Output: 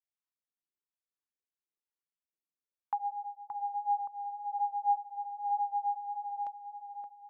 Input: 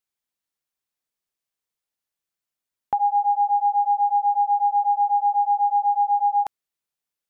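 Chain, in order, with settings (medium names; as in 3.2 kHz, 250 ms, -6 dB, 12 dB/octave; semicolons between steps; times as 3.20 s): phase shifter stages 2, 3 Hz, lowest notch 490–1000 Hz; wah-wah 1.1 Hz 330–1000 Hz, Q 2.7; filtered feedback delay 573 ms, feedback 63%, low-pass 860 Hz, level -4 dB; trim +2.5 dB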